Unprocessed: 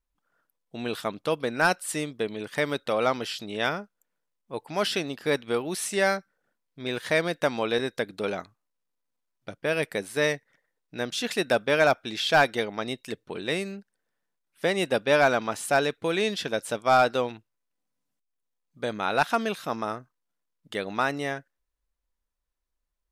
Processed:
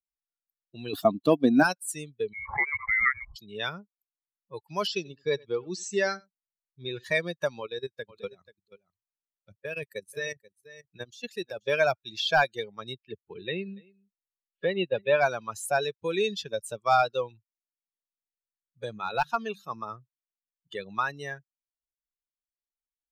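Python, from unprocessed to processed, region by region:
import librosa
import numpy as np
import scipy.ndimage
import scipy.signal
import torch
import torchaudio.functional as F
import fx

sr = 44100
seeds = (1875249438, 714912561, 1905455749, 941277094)

y = fx.chain(x, sr, fx.leveller(passes=1),
    fx.small_body(hz=(270.0, 700.0), ring_ms=45, db=17), at=(0.93, 1.63))
y = fx.chain(y, sr, fx.cheby2_highpass(hz=170.0, order=4, stop_db=40),
    fx.freq_invert(carrier_hz=2600),
    fx.pre_swell(db_per_s=90.0), at=(2.33, 3.36))
y = fx.chain(y, sr, fx.cheby1_lowpass(hz=7700.0, order=5),
    fx.echo_single(ms=90, db=-14.0), at=(4.87, 7.04))
y = fx.chain(y, sr, fx.level_steps(step_db=14),
    fx.echo_single(ms=484, db=-10.5), at=(7.6, 11.67))
y = fx.chain(y, sr, fx.lowpass(hz=3800.0, slope=24),
    fx.echo_single(ms=284, db=-15.0), at=(12.96, 15.21))
y = fx.chain(y, sr, fx.high_shelf(hz=9900.0, db=-7.0),
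    fx.hum_notches(base_hz=50, count=4),
    fx.overload_stage(gain_db=14.5), at=(18.98, 20.79))
y = fx.bin_expand(y, sr, power=2.0)
y = fx.band_squash(y, sr, depth_pct=40)
y = y * 10.0 ** (3.5 / 20.0)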